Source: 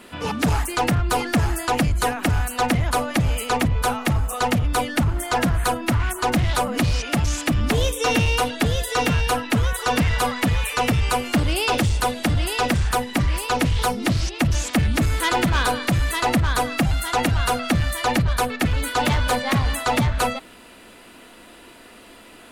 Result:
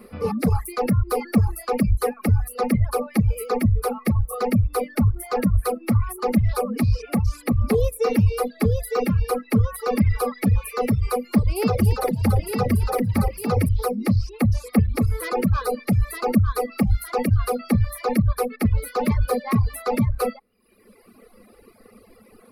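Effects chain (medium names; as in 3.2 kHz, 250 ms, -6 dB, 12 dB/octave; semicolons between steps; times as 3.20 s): Butterworth band-stop 960 Hz, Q 3.9; high-order bell 4.1 kHz -12.5 dB 2.8 oct; 11.31–13.69 s: frequency-shifting echo 285 ms, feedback 40%, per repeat +35 Hz, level -3.5 dB; reverb removal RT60 1.3 s; rippled EQ curve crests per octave 0.89, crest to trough 13 dB; reverb removal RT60 0.59 s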